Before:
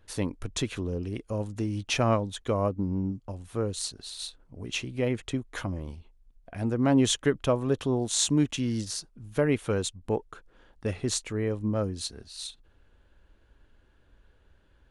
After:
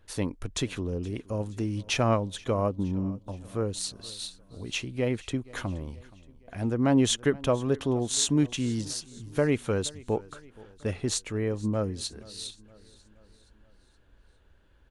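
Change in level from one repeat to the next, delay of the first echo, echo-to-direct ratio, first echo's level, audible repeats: −5.5 dB, 473 ms, −20.5 dB, −22.0 dB, 3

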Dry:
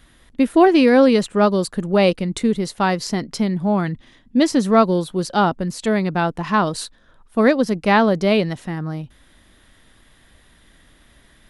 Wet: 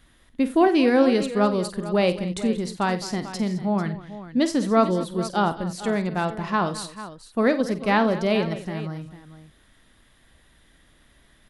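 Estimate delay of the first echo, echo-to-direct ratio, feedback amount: 49 ms, −8.5 dB, repeats not evenly spaced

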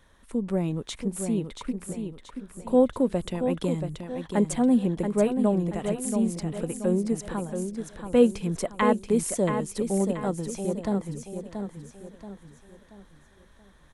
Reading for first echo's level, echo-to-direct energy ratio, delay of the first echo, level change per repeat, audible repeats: −7.0 dB, −6.0 dB, 680 ms, −8.0 dB, 4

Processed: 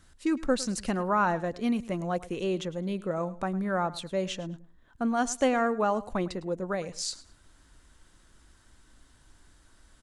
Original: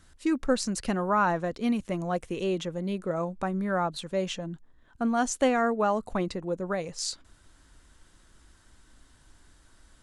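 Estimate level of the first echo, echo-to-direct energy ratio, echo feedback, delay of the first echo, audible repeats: −18.0 dB, −18.0 dB, 21%, 106 ms, 2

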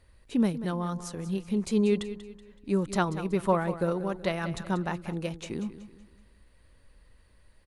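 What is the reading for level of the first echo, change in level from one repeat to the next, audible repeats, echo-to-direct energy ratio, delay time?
−13.0 dB, −8.0 dB, 3, −12.5 dB, 188 ms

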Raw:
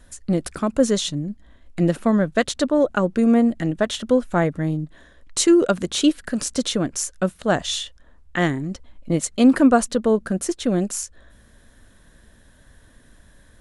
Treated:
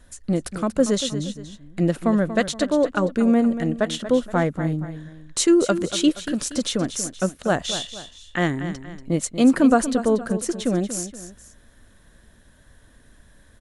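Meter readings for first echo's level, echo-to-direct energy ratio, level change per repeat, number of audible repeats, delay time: −11.5 dB, −11.0 dB, −8.0 dB, 2, 236 ms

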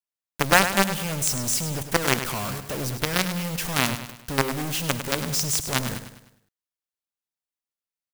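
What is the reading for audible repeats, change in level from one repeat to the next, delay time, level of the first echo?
4, −7.0 dB, 102 ms, −10.0 dB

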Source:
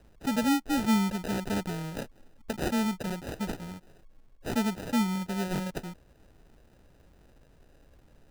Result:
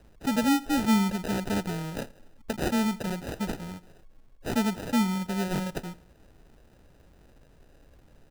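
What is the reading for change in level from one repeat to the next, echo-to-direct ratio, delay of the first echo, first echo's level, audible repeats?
−7.5 dB, −20.0 dB, 83 ms, −21.0 dB, 2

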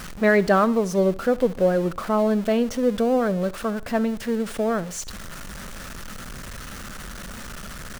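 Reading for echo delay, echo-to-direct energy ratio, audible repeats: 69 ms, −20.0 dB, 2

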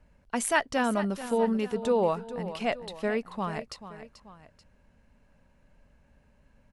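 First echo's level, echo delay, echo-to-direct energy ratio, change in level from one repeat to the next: −13.0 dB, 436 ms, −12.0 dB, −6.0 dB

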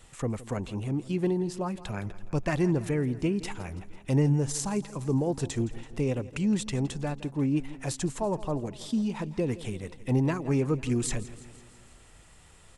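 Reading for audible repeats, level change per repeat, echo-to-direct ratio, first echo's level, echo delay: 4, −4.5 dB, −15.5 dB, −17.5 dB, 166 ms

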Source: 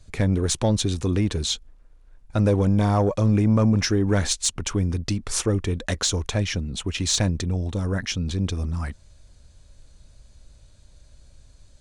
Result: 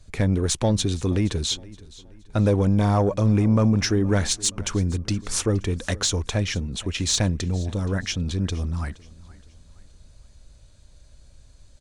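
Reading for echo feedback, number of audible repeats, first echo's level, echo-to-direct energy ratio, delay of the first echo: 39%, 2, −21.0 dB, −20.5 dB, 471 ms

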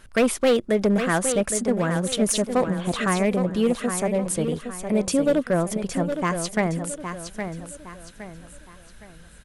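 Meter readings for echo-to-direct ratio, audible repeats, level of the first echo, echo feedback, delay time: −7.5 dB, 4, −8.0 dB, 37%, 814 ms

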